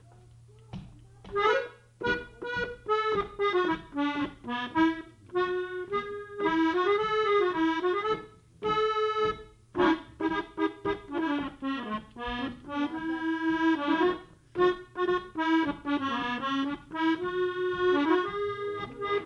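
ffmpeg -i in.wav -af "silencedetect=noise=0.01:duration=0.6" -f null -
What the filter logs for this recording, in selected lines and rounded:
silence_start: 0.00
silence_end: 0.73 | silence_duration: 0.73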